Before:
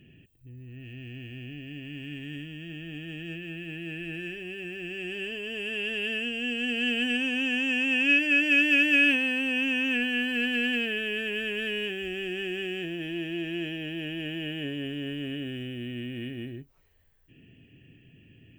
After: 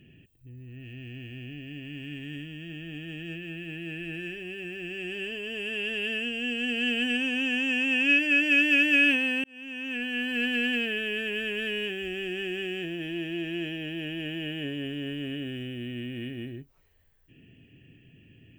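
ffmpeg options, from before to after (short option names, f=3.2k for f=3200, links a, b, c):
-filter_complex "[0:a]asplit=2[a][b];[a]atrim=end=9.44,asetpts=PTS-STARTPTS,afade=t=out:st=9.436:d=0.004:c=hsin[c];[b]atrim=start=9.44,asetpts=PTS-STARTPTS,afade=t=in:d=1[d];[c][d]concat=n=2:v=0:a=1"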